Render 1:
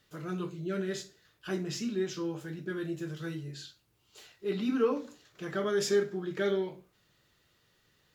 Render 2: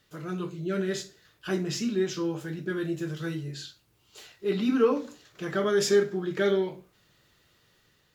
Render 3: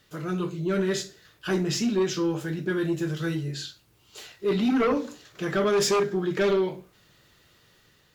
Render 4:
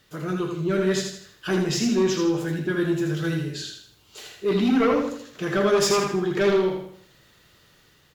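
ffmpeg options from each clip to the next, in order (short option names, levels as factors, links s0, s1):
-af "dynaudnorm=f=410:g=3:m=1.41,volume=1.26"
-af "aeval=exprs='0.266*sin(PI/2*2.51*val(0)/0.266)':c=same,volume=0.447"
-af "aecho=1:1:80|160|240|320|400:0.562|0.225|0.09|0.036|0.0144,volume=1.19"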